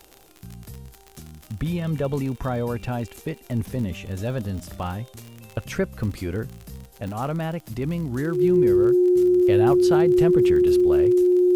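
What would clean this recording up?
click removal
notch filter 360 Hz, Q 30
downward expander −40 dBFS, range −21 dB

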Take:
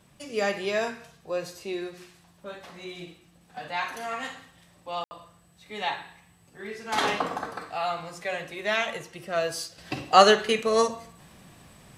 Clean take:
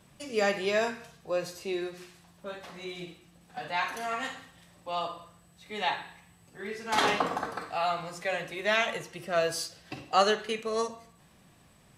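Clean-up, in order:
ambience match 0:05.04–0:05.11
level 0 dB, from 0:09.78 −8 dB

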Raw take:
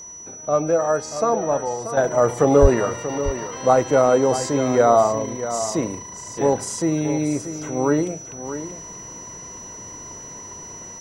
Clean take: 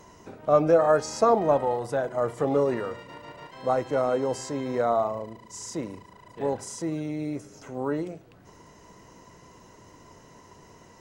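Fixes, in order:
notch filter 5,900 Hz, Q 30
0:02.61–0:02.73: high-pass filter 140 Hz 24 dB per octave
echo removal 634 ms −11 dB
0:01.97: level correction −9 dB

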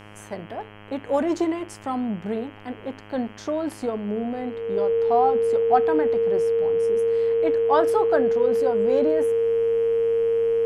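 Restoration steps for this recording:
hum removal 104.4 Hz, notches 31
notch filter 460 Hz, Q 30
downward expander −34 dBFS, range −21 dB

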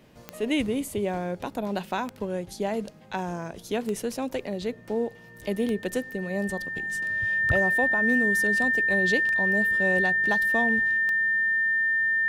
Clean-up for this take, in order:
click removal
notch filter 1,800 Hz, Q 30

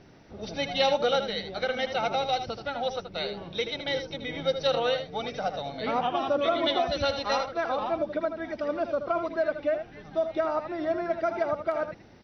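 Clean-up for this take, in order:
downward expander −35 dBFS, range −21 dB
echo removal 79 ms −9 dB

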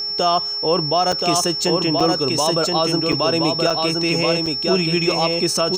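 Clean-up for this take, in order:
hum removal 410.7 Hz, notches 6
notch filter 5,400 Hz, Q 30
repair the gap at 0:01.12/0:02.00/0:03.12/0:03.70/0:04.46, 5.3 ms
echo removal 1,025 ms −3.5 dB

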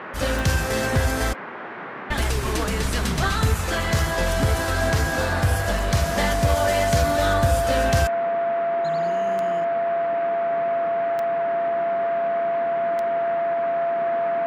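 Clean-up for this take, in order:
click removal
notch filter 680 Hz, Q 30
noise reduction from a noise print 30 dB

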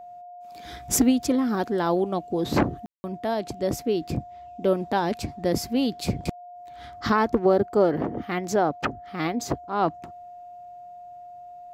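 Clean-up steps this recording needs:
notch filter 710 Hz, Q 30
ambience match 0:02.86–0:03.04

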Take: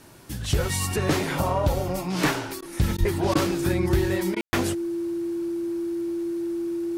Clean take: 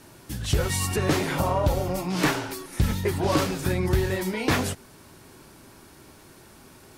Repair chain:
notch filter 340 Hz, Q 30
high-pass at the plosives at 0:02.99
ambience match 0:04.41–0:04.53
repair the gap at 0:02.61/0:02.97/0:03.34/0:04.35, 12 ms

